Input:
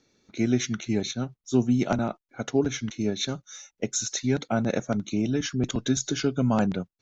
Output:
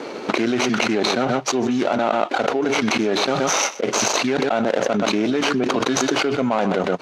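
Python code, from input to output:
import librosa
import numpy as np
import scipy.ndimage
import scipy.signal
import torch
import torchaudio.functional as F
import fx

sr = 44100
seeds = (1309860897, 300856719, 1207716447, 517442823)

p1 = scipy.signal.medfilt(x, 25)
p2 = fx.bandpass_edges(p1, sr, low_hz=540.0, high_hz=5100.0)
p3 = p2 + fx.echo_single(p2, sr, ms=125, db=-20.0, dry=0)
p4 = fx.env_flatten(p3, sr, amount_pct=100)
y = F.gain(torch.from_numpy(p4), 6.0).numpy()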